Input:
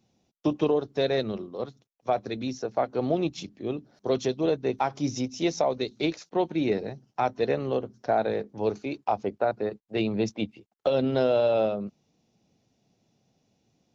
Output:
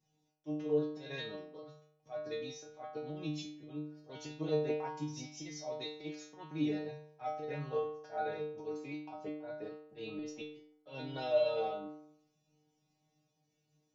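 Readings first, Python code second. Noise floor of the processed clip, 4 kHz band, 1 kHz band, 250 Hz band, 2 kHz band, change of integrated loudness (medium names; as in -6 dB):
-79 dBFS, -10.0 dB, -13.0 dB, -11.5 dB, -10.5 dB, -11.5 dB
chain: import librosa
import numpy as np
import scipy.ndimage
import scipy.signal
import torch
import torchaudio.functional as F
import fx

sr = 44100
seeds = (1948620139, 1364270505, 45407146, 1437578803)

y = fx.auto_swell(x, sr, attack_ms=141.0)
y = fx.spec_box(y, sr, start_s=4.68, length_s=0.24, low_hz=210.0, high_hz=3100.0, gain_db=7)
y = fx.stiff_resonator(y, sr, f0_hz=150.0, decay_s=0.77, stiffness=0.002)
y = F.gain(torch.from_numpy(y), 7.5).numpy()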